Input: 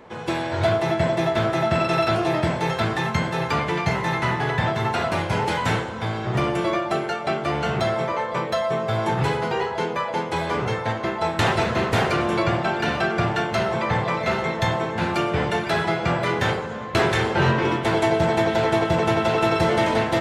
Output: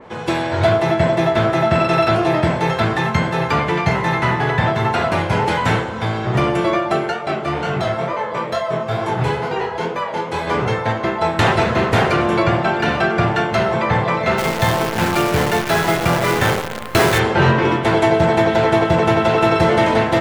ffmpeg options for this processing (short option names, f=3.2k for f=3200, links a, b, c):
-filter_complex "[0:a]asplit=3[a][b][c];[a]afade=t=out:st=7.11:d=0.02[d];[b]flanger=delay=20:depth=6.4:speed=2.2,afade=t=in:st=7.11:d=0.02,afade=t=out:st=10.46:d=0.02[e];[c]afade=t=in:st=10.46:d=0.02[f];[d][e][f]amix=inputs=3:normalize=0,asplit=3[g][h][i];[g]afade=t=out:st=14.37:d=0.02[j];[h]acrusher=bits=5:dc=4:mix=0:aa=0.000001,afade=t=in:st=14.37:d=0.02,afade=t=out:st=17.18:d=0.02[k];[i]afade=t=in:st=17.18:d=0.02[l];[j][k][l]amix=inputs=3:normalize=0,adynamicequalizer=threshold=0.0141:dfrequency=3200:dqfactor=0.7:tfrequency=3200:tqfactor=0.7:attack=5:release=100:ratio=0.375:range=2:mode=cutabove:tftype=highshelf,volume=5.5dB"